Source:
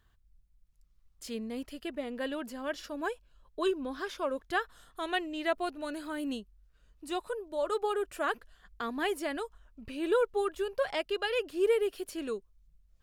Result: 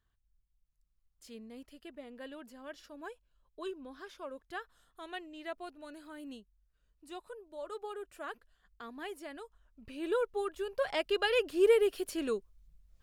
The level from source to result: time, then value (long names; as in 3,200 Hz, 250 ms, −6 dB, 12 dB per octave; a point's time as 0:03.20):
0:09.37 −11 dB
0:10.05 −4.5 dB
0:10.60 −4.5 dB
0:11.16 +2 dB